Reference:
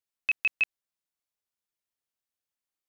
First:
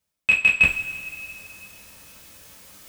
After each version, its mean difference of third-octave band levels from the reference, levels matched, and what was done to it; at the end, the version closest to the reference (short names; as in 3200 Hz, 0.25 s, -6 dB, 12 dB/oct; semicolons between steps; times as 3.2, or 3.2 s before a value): 5.5 dB: low shelf 250 Hz +8.5 dB; reverse; upward compressor, threshold -29 dBFS; reverse; sample leveller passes 1; two-slope reverb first 0.28 s, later 2.8 s, from -19 dB, DRR -5 dB; gain +3.5 dB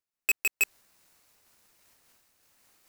7.5 dB: half-waves squared off; reverse; upward compressor, threshold -41 dBFS; reverse; bell 3300 Hz -5 dB 0.28 oct; noise-modulated level, depth 55%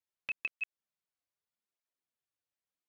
4.0 dB: high shelf 4600 Hz -8.5 dB; compressor, threshold -32 dBFS, peak gain reduction 8.5 dB; tape flanging out of phase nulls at 0.82 Hz, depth 5.2 ms; gain +1 dB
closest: third